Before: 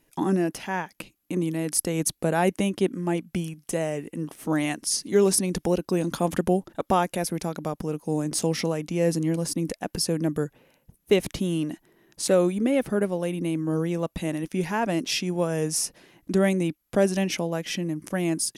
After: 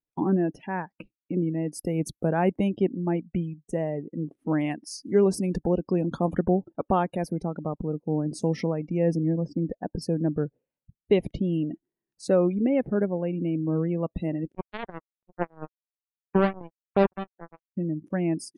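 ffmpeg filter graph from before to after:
ffmpeg -i in.wav -filter_complex "[0:a]asettb=1/sr,asplit=3[link_01][link_02][link_03];[link_01]atrim=end=9.154[link_04];[link_02]atrim=start=9.15:end=10.02,asetpts=PTS-STARTPTS,afade=type=in:duration=0.004:curve=qsin,afade=type=out:start_time=0.866:duration=0.004:curve=qsin,lowpass=frequency=8300:width=0.5412,lowpass=frequency=8300:width=1.3066,highshelf=frequency=4000:gain=-10[link_05];[link_03]atrim=start=10.016[link_06];[link_04][link_05]acrossfade=duration=0.004:curve1=hsin:curve2=qsin[link_07];[link_07][link_06]acrossfade=duration=0.004:curve1=qsin:curve2=hsin,asettb=1/sr,asplit=3[link_08][link_09][link_10];[link_08]atrim=end=14.524[link_11];[link_09]atrim=start=14.52:end=17.77,asetpts=PTS-STARTPTS,afade=type=in:duration=0.004:curve=qsin,afade=type=out:start_time=3.246:duration=0.004:curve=qsin,lowpass=frequency=3100:width=0.5412,lowpass=frequency=3100:width=1.3066,acrusher=bits=2:mix=0:aa=0.5[link_12];[link_10]atrim=start=17.766[link_13];[link_11][link_12]acrossfade=duration=0.004:curve1=hsin:curve2=qsin[link_14];[link_14][link_13]acrossfade=duration=0.004:curve1=qsin:curve2=hsin,afftdn=noise_reduction=30:noise_floor=-35,lowpass=frequency=1900:poles=1,lowshelf=frequency=190:gain=4.5,volume=-1.5dB" out.wav

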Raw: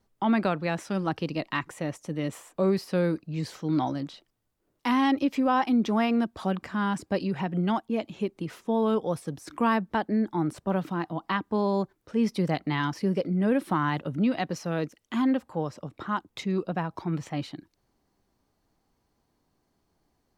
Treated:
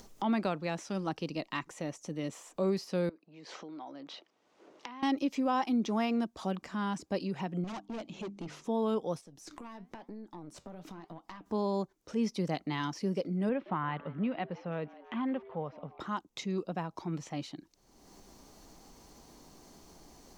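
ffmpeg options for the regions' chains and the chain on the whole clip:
ffmpeg -i in.wav -filter_complex "[0:a]asettb=1/sr,asplit=3[link_01][link_02][link_03];[link_01]atrim=end=3.094[link_04];[link_02]atrim=start=3.09:end=5.03,asetpts=PTS-STARTPTS,afade=type=in:duration=0.004:curve=qsin,afade=type=out:start_time=1.936:duration=0.004:curve=qsin,acompressor=threshold=-39dB:ratio=8:attack=3.2:release=140:knee=1:detection=peak,highpass=360,lowpass=2900[link_05];[link_03]atrim=start=5.026[link_06];[link_04][link_05]acrossfade=duration=0.004:curve1=hsin:curve2=qsin[link_07];[link_07][link_06]acrossfade=duration=0.004:curve1=qsin:curve2=hsin,asettb=1/sr,asplit=3[link_08][link_09][link_10];[link_08]atrim=end=7.644[link_11];[link_09]atrim=start=7.64:end=8.64,asetpts=PTS-STARTPTS,afade=type=in:duration=0.004:curve=qsin,afade=type=out:start_time=0.996:duration=0.004:curve=qsin,bandreject=frequency=50:width_type=h:width=6,bandreject=frequency=100:width_type=h:width=6,bandreject=frequency=150:width_type=h:width=6,bandreject=frequency=200:width_type=h:width=6,bandreject=frequency=250:width_type=h:width=6,bandreject=frequency=300:width_type=h:width=6,asoftclip=type=hard:threshold=-32dB,adynamicsmooth=sensitivity=4:basefreq=6700[link_12];[link_10]atrim=start=8.636[link_13];[link_11][link_12]acrossfade=duration=0.004:curve1=hsin:curve2=qsin[link_14];[link_14][link_13]acrossfade=duration=0.004:curve1=qsin:curve2=hsin,asettb=1/sr,asplit=3[link_15][link_16][link_17];[link_15]atrim=end=9.214[link_18];[link_16]atrim=start=9.21:end=11.46,asetpts=PTS-STARTPTS,afade=type=in:duration=0.004:curve=qsin,afade=type=out:start_time=2.246:duration=0.004:curve=qsin,acompressor=threshold=-37dB:ratio=4:attack=3.2:release=140:knee=1:detection=peak,flanger=delay=5:depth=6.7:regen=-77:speed=1:shape=sinusoidal,aeval=exprs='(tanh(50.1*val(0)+0.75)-tanh(0.75))/50.1':channel_layout=same[link_19];[link_17]atrim=start=11.456[link_20];[link_18][link_19]acrossfade=duration=0.004:curve1=hsin:curve2=qsin[link_21];[link_21][link_20]acrossfade=duration=0.004:curve1=qsin:curve2=hsin,asettb=1/sr,asplit=3[link_22][link_23][link_24];[link_22]atrim=end=13.494[link_25];[link_23]atrim=start=13.49:end=16,asetpts=PTS-STARTPTS,afade=type=in:duration=0.004:curve=qsin,afade=type=out:start_time=2.506:duration=0.004:curve=qsin,lowpass=frequency=2800:width=0.5412,lowpass=frequency=2800:width=1.3066,equalizer=frequency=310:width=3.2:gain=-8,asplit=5[link_26][link_27][link_28][link_29][link_30];[link_27]adelay=167,afreqshift=130,volume=-20dB[link_31];[link_28]adelay=334,afreqshift=260,volume=-26.2dB[link_32];[link_29]adelay=501,afreqshift=390,volume=-32.4dB[link_33];[link_30]adelay=668,afreqshift=520,volume=-38.6dB[link_34];[link_26][link_31][link_32][link_33][link_34]amix=inputs=5:normalize=0,atrim=end_sample=110691[link_35];[link_24]atrim=start=15.996[link_36];[link_25][link_35]acrossfade=duration=0.004:curve1=hsin:curve2=qsin[link_37];[link_37][link_36]acrossfade=duration=0.004:curve1=qsin:curve2=hsin,acompressor=mode=upward:threshold=-30dB:ratio=2.5,equalizer=frequency=100:width_type=o:width=0.67:gain=-10,equalizer=frequency=1600:width_type=o:width=0.67:gain=-4,equalizer=frequency=6300:width_type=o:width=0.67:gain=8,acrossover=split=6700[link_38][link_39];[link_39]acompressor=threshold=-50dB:ratio=4:attack=1:release=60[link_40];[link_38][link_40]amix=inputs=2:normalize=0,volume=-5.5dB" out.wav

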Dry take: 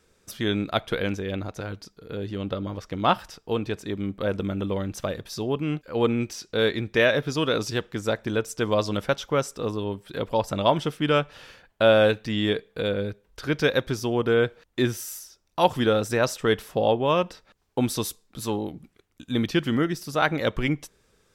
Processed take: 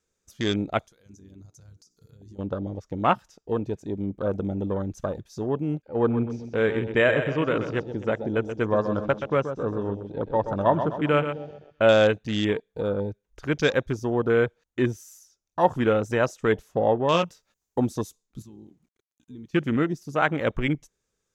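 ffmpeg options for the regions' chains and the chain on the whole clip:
ffmpeg -i in.wav -filter_complex "[0:a]asettb=1/sr,asplit=3[link_01][link_02][link_03];[link_01]atrim=end=0.794[link_04];[link_02]atrim=start=0.79:end=2.39,asetpts=PTS-STARTPTS,afade=type=in:duration=0.004:curve=qsin,afade=type=out:start_time=1.596:duration=0.004:curve=qsin,highshelf=frequency=4100:width_type=q:width=1.5:gain=11.5,bandreject=frequency=60:width_type=h:width=6,bandreject=frequency=120:width_type=h:width=6,bandreject=frequency=180:width_type=h:width=6,bandreject=frequency=240:width_type=h:width=6,bandreject=frequency=300:width_type=h:width=6,bandreject=frequency=360:width_type=h:width=6,bandreject=frequency=420:width_type=h:width=6,bandreject=frequency=480:width_type=h:width=6,acompressor=threshold=-40dB:ratio=20:attack=3.2:release=140:knee=1:detection=peak[link_05];[link_03]atrim=start=2.386[link_06];[link_04][link_05]acrossfade=duration=0.004:curve1=hsin:curve2=qsin[link_07];[link_07][link_06]acrossfade=duration=0.004:curve1=qsin:curve2=hsin,asettb=1/sr,asplit=3[link_08][link_09][link_10];[link_08]atrim=end=5.824[link_11];[link_09]atrim=start=5.82:end=11.83,asetpts=PTS-STARTPTS,afade=type=in:duration=0.004:curve=qsin,afade=type=out:start_time=6.006:duration=0.004:curve=qsin,lowpass=3300,aecho=1:1:128|256|384|512|640|768:0.376|0.188|0.094|0.047|0.0235|0.0117,atrim=end_sample=265041[link_12];[link_10]atrim=start=11.826[link_13];[link_11][link_12]acrossfade=duration=0.004:curve1=hsin:curve2=qsin[link_14];[link_14][link_13]acrossfade=duration=0.004:curve1=qsin:curve2=hsin,asettb=1/sr,asplit=3[link_15][link_16][link_17];[link_15]atrim=end=17.124[link_18];[link_16]atrim=start=17.12:end=17.8,asetpts=PTS-STARTPTS,afade=type=in:duration=0.004:curve=qsin,afade=type=out:start_time=0.676:duration=0.004:curve=qsin,aemphasis=mode=production:type=50kf,asplit=2[link_19][link_20];[link_20]adelay=18,volume=-6.5dB[link_21];[link_19][link_21]amix=inputs=2:normalize=0,atrim=end_sample=29988[link_22];[link_17]atrim=start=17.796[link_23];[link_18][link_22]acrossfade=duration=0.004:curve1=hsin:curve2=qsin[link_24];[link_24][link_23]acrossfade=duration=0.004:curve1=qsin:curve2=hsin,asettb=1/sr,asplit=3[link_25][link_26][link_27];[link_25]atrim=end=18.424[link_28];[link_26]atrim=start=18.42:end=19.54,asetpts=PTS-STARTPTS,afade=type=in:duration=0.004:curve=qsin,afade=type=out:start_time=1.116:duration=0.004:curve=qsin,acompressor=threshold=-46dB:ratio=2.5:attack=3.2:release=140:knee=1:detection=peak,aeval=exprs='val(0)*gte(abs(val(0)),0.001)':channel_layout=same[link_29];[link_27]atrim=start=19.536[link_30];[link_28][link_29]acrossfade=duration=0.004:curve1=hsin:curve2=qsin[link_31];[link_31][link_30]acrossfade=duration=0.004:curve1=qsin:curve2=hsin,afwtdn=0.0251,equalizer=frequency=6600:width=3.1:gain=11" out.wav

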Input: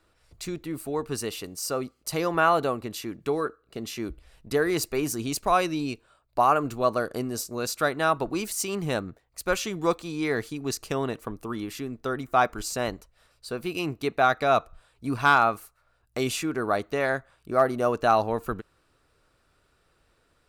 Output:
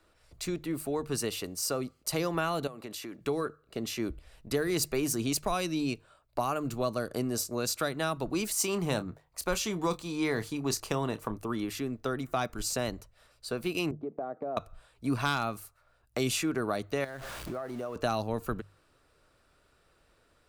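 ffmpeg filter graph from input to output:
ffmpeg -i in.wav -filter_complex "[0:a]asettb=1/sr,asplit=3[link_01][link_02][link_03];[link_01]atrim=end=2.674[link_04];[link_02]atrim=start=2.67:end=3.2,asetpts=PTS-STARTPTS,afade=type=in:duration=0.004:curve=qsin,afade=type=out:start_time=0.526:duration=0.004:curve=qsin,highpass=frequency=330:poles=1,acompressor=threshold=-36dB:ratio=8:attack=3.2:release=140:knee=1:detection=peak[link_05];[link_03]atrim=start=3.196[link_06];[link_04][link_05]acrossfade=duration=0.004:curve1=hsin:curve2=qsin[link_07];[link_07][link_06]acrossfade=duration=0.004:curve1=qsin:curve2=hsin,asettb=1/sr,asplit=3[link_08][link_09][link_10];[link_08]atrim=end=8.534[link_11];[link_09]atrim=start=8.53:end=11.38,asetpts=PTS-STARTPTS,afade=type=in:duration=0.004:curve=qsin,afade=type=out:start_time=2.846:duration=0.004:curve=qsin,equalizer=frequency=960:width_type=o:width=0.6:gain=6.5,asplit=2[link_12][link_13];[link_13]adelay=28,volume=-12.5dB[link_14];[link_12][link_14]amix=inputs=2:normalize=0,atrim=end_sample=125685[link_15];[link_10]atrim=start=11.376[link_16];[link_11][link_15]acrossfade=duration=0.004:curve1=hsin:curve2=qsin[link_17];[link_17][link_16]acrossfade=duration=0.004:curve1=qsin:curve2=hsin,asettb=1/sr,asplit=3[link_18][link_19][link_20];[link_18]atrim=end=13.914[link_21];[link_19]atrim=start=13.91:end=14.57,asetpts=PTS-STARTPTS,afade=type=in:duration=0.004:curve=qsin,afade=type=out:start_time=0.656:duration=0.004:curve=qsin,asuperpass=centerf=340:order=4:qfactor=0.76,acompressor=threshold=-33dB:ratio=5:attack=3.2:release=140:knee=1:detection=peak[link_22];[link_20]atrim=start=14.566[link_23];[link_21][link_22]acrossfade=duration=0.004:curve1=hsin:curve2=qsin[link_24];[link_24][link_23]acrossfade=duration=0.004:curve1=qsin:curve2=hsin,asettb=1/sr,asplit=3[link_25][link_26][link_27];[link_25]atrim=end=17.044[link_28];[link_26]atrim=start=17.04:end=17.96,asetpts=PTS-STARTPTS,afade=type=in:duration=0.004:curve=qsin,afade=type=out:start_time=0.916:duration=0.004:curve=qsin,aeval=exprs='val(0)+0.5*0.0158*sgn(val(0))':channel_layout=same,acompressor=threshold=-33dB:ratio=16:attack=3.2:release=140:knee=1:detection=peak[link_29];[link_27]atrim=start=17.956[link_30];[link_28][link_29]acrossfade=duration=0.004:curve1=hsin:curve2=qsin[link_31];[link_31][link_30]acrossfade=duration=0.004:curve1=qsin:curve2=hsin,equalizer=frequency=600:width_type=o:width=0.27:gain=3,bandreject=frequency=50:width_type=h:width=6,bandreject=frequency=100:width_type=h:width=6,bandreject=frequency=150:width_type=h:width=6,acrossover=split=270|3000[link_32][link_33][link_34];[link_33]acompressor=threshold=-31dB:ratio=4[link_35];[link_32][link_35][link_34]amix=inputs=3:normalize=0" out.wav

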